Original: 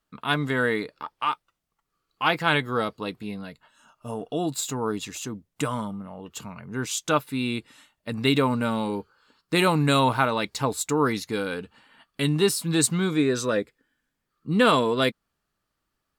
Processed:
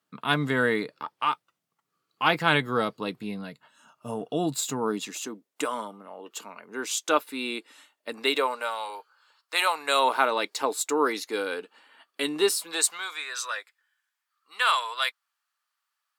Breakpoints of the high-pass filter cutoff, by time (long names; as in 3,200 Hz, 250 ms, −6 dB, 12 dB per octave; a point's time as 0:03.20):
high-pass filter 24 dB per octave
0:04.59 120 Hz
0:05.47 310 Hz
0:08.11 310 Hz
0:08.77 660 Hz
0:09.73 660 Hz
0:10.20 320 Hz
0:12.39 320 Hz
0:13.20 930 Hz